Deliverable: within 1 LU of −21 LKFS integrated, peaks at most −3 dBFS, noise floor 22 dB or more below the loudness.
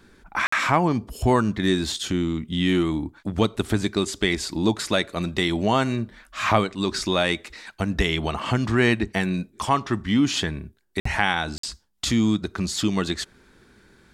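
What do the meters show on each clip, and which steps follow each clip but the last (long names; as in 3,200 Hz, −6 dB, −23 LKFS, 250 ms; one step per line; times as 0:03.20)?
number of dropouts 3; longest dropout 54 ms; integrated loudness −24.0 LKFS; sample peak −4.5 dBFS; target loudness −21.0 LKFS
→ repair the gap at 0:00.47/0:11.00/0:11.58, 54 ms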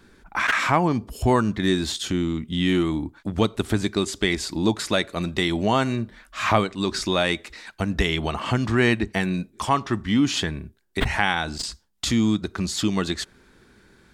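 number of dropouts 0; integrated loudness −24.0 LKFS; sample peak −4.5 dBFS; target loudness −21.0 LKFS
→ level +3 dB
brickwall limiter −3 dBFS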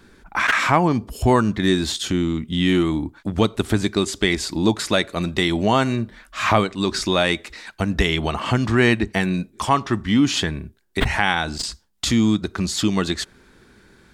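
integrated loudness −21.0 LKFS; sample peak −3.0 dBFS; background noise floor −53 dBFS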